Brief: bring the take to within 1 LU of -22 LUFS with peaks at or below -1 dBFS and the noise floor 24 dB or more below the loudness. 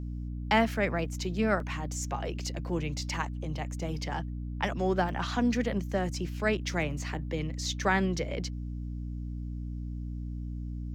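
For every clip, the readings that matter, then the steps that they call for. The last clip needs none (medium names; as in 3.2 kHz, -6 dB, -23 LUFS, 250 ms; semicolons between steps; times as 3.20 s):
dropouts 3; longest dropout 1.7 ms; hum 60 Hz; highest harmonic 300 Hz; hum level -34 dBFS; loudness -32.0 LUFS; peak level -12.5 dBFS; loudness target -22.0 LUFS
-> interpolate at 1.60/5.09/6.82 s, 1.7 ms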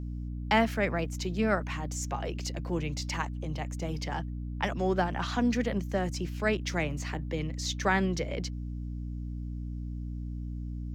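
dropouts 0; hum 60 Hz; highest harmonic 300 Hz; hum level -34 dBFS
-> de-hum 60 Hz, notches 5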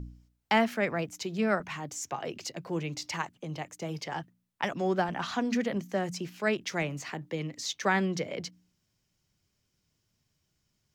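hum not found; loudness -32.0 LUFS; peak level -12.5 dBFS; loudness target -22.0 LUFS
-> trim +10 dB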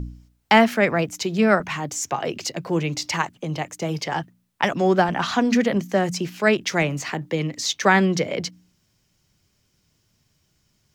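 loudness -22.0 LUFS; peak level -2.5 dBFS; noise floor -68 dBFS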